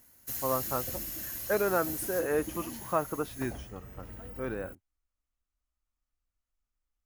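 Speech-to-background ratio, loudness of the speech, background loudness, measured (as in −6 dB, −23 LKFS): 4.5 dB, −33.0 LKFS, −37.5 LKFS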